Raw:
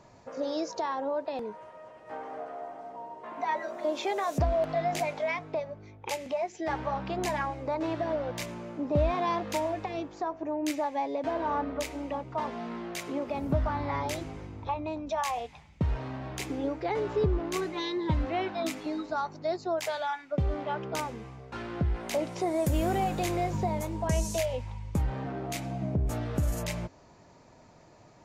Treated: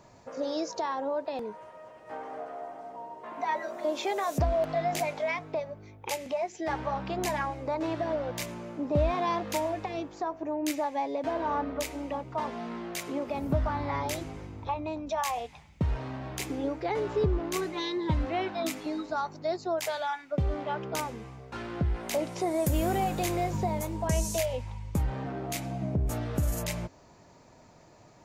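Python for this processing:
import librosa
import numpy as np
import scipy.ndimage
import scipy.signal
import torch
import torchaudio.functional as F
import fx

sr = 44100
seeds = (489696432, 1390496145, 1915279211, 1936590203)

y = fx.high_shelf(x, sr, hz=9600.0, db=8.5)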